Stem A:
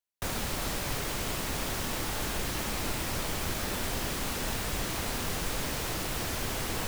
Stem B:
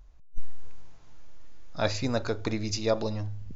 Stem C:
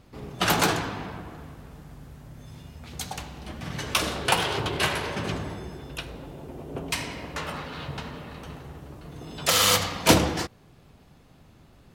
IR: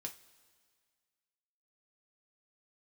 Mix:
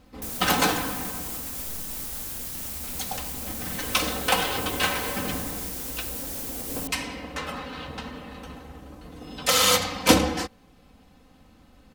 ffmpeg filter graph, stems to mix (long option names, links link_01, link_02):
-filter_complex "[0:a]highshelf=frequency=5400:gain=10,volume=-6.5dB[link_01];[1:a]adelay=1300,volume=-13.5dB[link_02];[2:a]aecho=1:1:3.9:0.73,volume=-1.5dB[link_03];[link_01][link_02]amix=inputs=2:normalize=0,highshelf=frequency=6600:gain=9.5,alimiter=limit=-24dB:level=0:latency=1:release=343,volume=0dB[link_04];[link_03][link_04]amix=inputs=2:normalize=0"